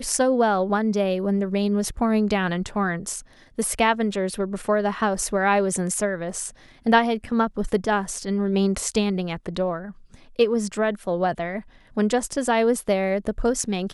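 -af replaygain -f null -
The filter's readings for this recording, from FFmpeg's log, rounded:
track_gain = +3.8 dB
track_peak = 0.378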